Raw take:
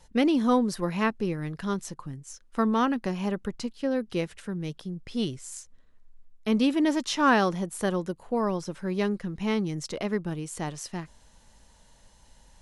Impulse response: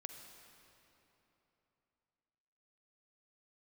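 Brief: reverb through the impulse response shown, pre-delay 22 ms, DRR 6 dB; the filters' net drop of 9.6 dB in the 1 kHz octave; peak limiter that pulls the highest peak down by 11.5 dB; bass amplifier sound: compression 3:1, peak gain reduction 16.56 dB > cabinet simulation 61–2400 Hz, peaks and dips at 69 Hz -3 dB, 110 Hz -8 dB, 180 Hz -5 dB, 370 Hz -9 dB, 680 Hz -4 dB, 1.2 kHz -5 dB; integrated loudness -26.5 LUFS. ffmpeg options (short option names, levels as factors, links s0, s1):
-filter_complex "[0:a]equalizer=f=1000:t=o:g=-8.5,alimiter=limit=0.0708:level=0:latency=1,asplit=2[s0][s1];[1:a]atrim=start_sample=2205,adelay=22[s2];[s1][s2]afir=irnorm=-1:irlink=0,volume=0.794[s3];[s0][s3]amix=inputs=2:normalize=0,acompressor=threshold=0.00447:ratio=3,highpass=f=61:w=0.5412,highpass=f=61:w=1.3066,equalizer=f=69:t=q:w=4:g=-3,equalizer=f=110:t=q:w=4:g=-8,equalizer=f=180:t=q:w=4:g=-5,equalizer=f=370:t=q:w=4:g=-9,equalizer=f=680:t=q:w=4:g=-4,equalizer=f=1200:t=q:w=4:g=-5,lowpass=f=2400:w=0.5412,lowpass=f=2400:w=1.3066,volume=15"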